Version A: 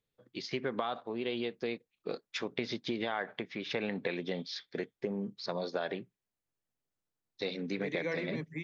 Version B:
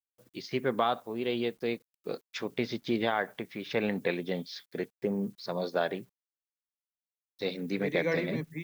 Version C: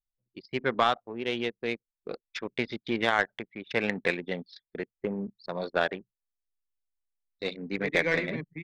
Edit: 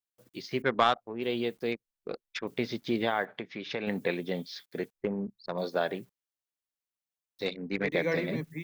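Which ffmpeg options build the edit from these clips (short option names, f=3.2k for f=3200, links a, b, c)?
-filter_complex "[2:a]asplit=4[a][b][c][d];[1:a]asplit=6[e][f][g][h][i][j];[e]atrim=end=0.622[k];[a]atrim=start=0.618:end=1.222[l];[f]atrim=start=1.218:end=1.722[m];[b]atrim=start=1.718:end=2.472[n];[g]atrim=start=2.468:end=3.252[o];[0:a]atrim=start=3.248:end=3.872[p];[h]atrim=start=3.868:end=4.942[q];[c]atrim=start=4.938:end=5.582[r];[i]atrim=start=5.578:end=7.462[s];[d]atrim=start=7.458:end=7.922[t];[j]atrim=start=7.918[u];[k][l]acrossfade=d=0.004:c1=hsin:c2=hsin[v];[v][m]acrossfade=d=0.004:c1=hsin:c2=hsin[w];[w][n]acrossfade=d=0.004:c1=hsin:c2=hsin[x];[x][o]acrossfade=d=0.004:c1=hsin:c2=hsin[y];[y][p]acrossfade=d=0.004:c1=hsin:c2=hsin[z];[z][q]acrossfade=d=0.004:c1=hsin:c2=hsin[aa];[aa][r]acrossfade=d=0.004:c1=hsin:c2=hsin[ab];[ab][s]acrossfade=d=0.004:c1=hsin:c2=hsin[ac];[ac][t]acrossfade=d=0.004:c1=hsin:c2=hsin[ad];[ad][u]acrossfade=d=0.004:c1=hsin:c2=hsin"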